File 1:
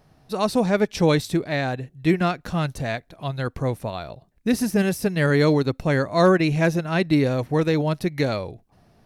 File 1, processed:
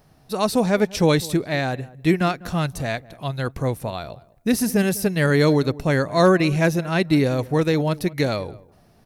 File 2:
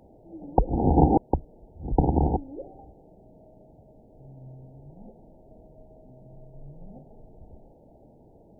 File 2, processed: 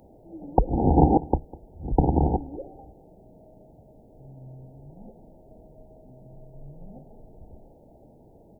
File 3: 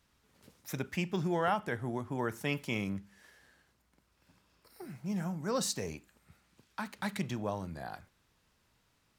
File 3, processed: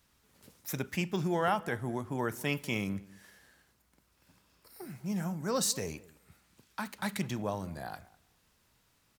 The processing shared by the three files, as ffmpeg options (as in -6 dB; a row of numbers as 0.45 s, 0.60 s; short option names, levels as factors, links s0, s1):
-filter_complex "[0:a]highshelf=f=8100:g=8.5,asplit=2[s0][s1];[s1]adelay=200,lowpass=f=1300:p=1,volume=0.1,asplit=2[s2][s3];[s3]adelay=200,lowpass=f=1300:p=1,volume=0.16[s4];[s2][s4]amix=inputs=2:normalize=0[s5];[s0][s5]amix=inputs=2:normalize=0,volume=1.12"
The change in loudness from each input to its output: +1.0 LU, +1.0 LU, +1.5 LU